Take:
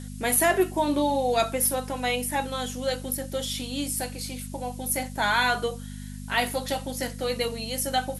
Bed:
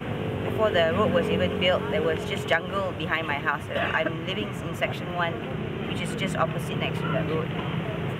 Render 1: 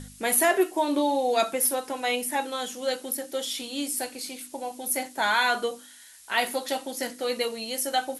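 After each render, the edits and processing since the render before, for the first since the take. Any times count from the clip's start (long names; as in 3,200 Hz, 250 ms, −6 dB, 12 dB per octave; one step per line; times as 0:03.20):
hum removal 50 Hz, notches 6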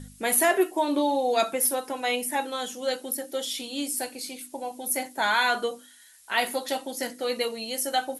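broadband denoise 6 dB, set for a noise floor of −50 dBFS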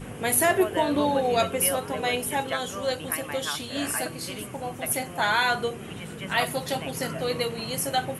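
mix in bed −8.5 dB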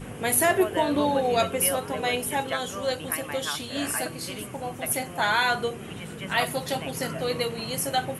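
no processing that can be heard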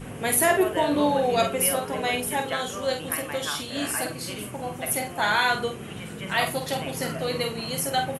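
double-tracking delay 48 ms −6.5 dB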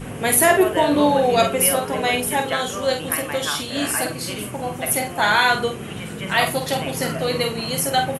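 level +5.5 dB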